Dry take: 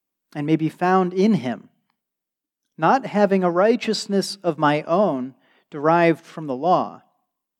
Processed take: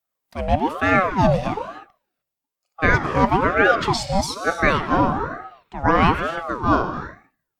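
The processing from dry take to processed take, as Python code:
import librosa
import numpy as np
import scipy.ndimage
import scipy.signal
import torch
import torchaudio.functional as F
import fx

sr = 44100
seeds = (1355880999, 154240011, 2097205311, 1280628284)

y = fx.rev_gated(x, sr, seeds[0], gate_ms=330, shape='flat', drr_db=8.0)
y = fx.ring_lfo(y, sr, carrier_hz=680.0, swing_pct=50, hz=1.1)
y = F.gain(torch.from_numpy(y), 2.5).numpy()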